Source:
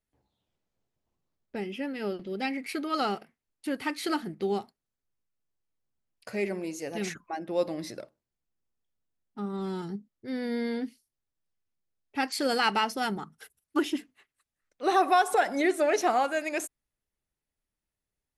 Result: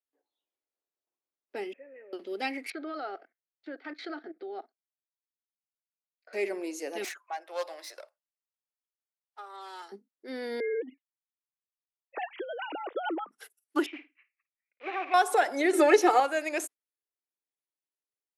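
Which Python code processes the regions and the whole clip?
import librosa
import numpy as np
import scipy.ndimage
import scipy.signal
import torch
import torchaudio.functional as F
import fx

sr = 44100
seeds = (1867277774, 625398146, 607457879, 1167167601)

y = fx.chain(x, sr, fx.cvsd(bps=16000),
    fx.level_steps(step_db=13),
    fx.formant_cascade(vowel='e'), at=(1.73, 2.13))
y = fx.chain(y, sr, fx.level_steps(step_db=19),
    fx.cabinet(low_hz=200.0, low_slope=12, high_hz=3900.0, hz=(210.0, 310.0, 680.0, 1000.0, 1500.0, 2800.0), db=(-5, 3, 8, -9, 7, -10)), at=(2.7, 6.33))
y = fx.chain(y, sr, fx.self_delay(depth_ms=0.15),
    fx.highpass(hz=620.0, slope=24), at=(7.04, 9.92))
y = fx.chain(y, sr, fx.sine_speech(),
    fx.high_shelf(hz=2700.0, db=-6.5),
    fx.over_compress(threshold_db=-34.0, ratio=-1.0), at=(10.6, 13.31))
y = fx.chain(y, sr, fx.block_float(bits=3),
    fx.ladder_lowpass(hz=2500.0, resonance_pct=80),
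    fx.room_flutter(wall_m=9.2, rt60_s=0.23), at=(13.86, 15.14))
y = fx.chain(y, sr, fx.low_shelf(hz=250.0, db=11.0),
    fx.comb(ms=2.3, depth=0.83),
    fx.band_squash(depth_pct=70), at=(15.73, 16.2))
y = fx.noise_reduce_blind(y, sr, reduce_db=11)
y = scipy.signal.sosfilt(scipy.signal.butter(6, 290.0, 'highpass', fs=sr, output='sos'), y)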